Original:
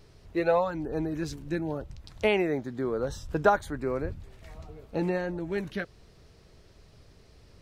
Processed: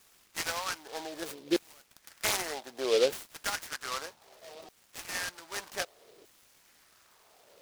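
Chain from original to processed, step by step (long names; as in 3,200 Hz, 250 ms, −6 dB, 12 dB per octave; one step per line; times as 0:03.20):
variable-slope delta modulation 64 kbit/s
auto-filter high-pass saw down 0.64 Hz 370–4,200 Hz
short delay modulated by noise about 3,400 Hz, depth 0.098 ms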